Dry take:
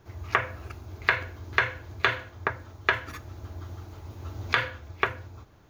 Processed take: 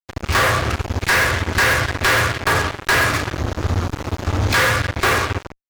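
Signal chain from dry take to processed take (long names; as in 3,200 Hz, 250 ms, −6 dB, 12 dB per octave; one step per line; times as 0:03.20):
treble cut that deepens with the level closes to 2,200 Hz, closed at −23 dBFS
rectangular room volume 280 cubic metres, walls mixed, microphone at 1 metre
fuzz pedal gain 38 dB, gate −38 dBFS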